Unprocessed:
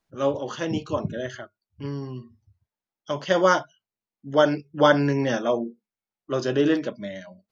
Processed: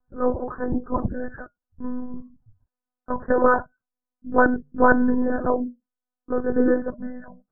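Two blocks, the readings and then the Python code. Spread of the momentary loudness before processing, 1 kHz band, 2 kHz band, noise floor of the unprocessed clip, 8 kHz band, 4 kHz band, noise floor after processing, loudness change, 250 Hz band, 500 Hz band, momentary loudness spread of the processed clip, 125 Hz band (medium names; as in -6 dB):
17 LU, +2.5 dB, +2.5 dB, under -85 dBFS, no reading, under -40 dB, under -85 dBFS, +1.0 dB, +2.5 dB, -0.5 dB, 17 LU, -6.0 dB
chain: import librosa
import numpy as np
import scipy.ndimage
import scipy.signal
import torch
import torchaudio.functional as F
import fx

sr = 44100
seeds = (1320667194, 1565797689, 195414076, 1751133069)

y = scipy.signal.sosfilt(scipy.signal.butter(16, 1700.0, 'lowpass', fs=sr, output='sos'), x)
y = fx.low_shelf(y, sr, hz=94.0, db=12.0)
y = fx.lpc_monotone(y, sr, seeds[0], pitch_hz=250.0, order=16)
y = F.gain(torch.from_numpy(y), 1.0).numpy()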